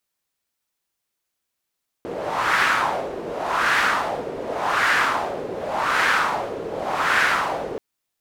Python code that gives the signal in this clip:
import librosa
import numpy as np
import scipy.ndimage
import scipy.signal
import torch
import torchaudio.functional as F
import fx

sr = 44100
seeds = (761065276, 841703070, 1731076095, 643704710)

y = fx.wind(sr, seeds[0], length_s=5.73, low_hz=440.0, high_hz=1600.0, q=2.6, gusts=5, swing_db=12.0)